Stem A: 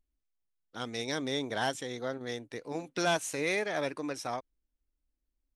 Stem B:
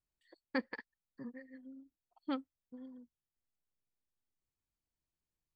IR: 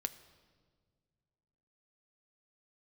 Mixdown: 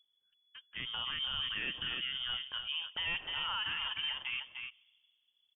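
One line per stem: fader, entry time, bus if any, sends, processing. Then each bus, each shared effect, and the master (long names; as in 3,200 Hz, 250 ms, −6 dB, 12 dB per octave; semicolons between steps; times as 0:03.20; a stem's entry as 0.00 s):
−3.0 dB, 0.00 s, send −4 dB, echo send −6 dB, no processing
−18.5 dB, 0.00 s, no send, no echo send, no processing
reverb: on, RT60 1.8 s, pre-delay 6 ms
echo: single-tap delay 300 ms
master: voice inversion scrambler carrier 3,400 Hz; brickwall limiter −27 dBFS, peak gain reduction 10.5 dB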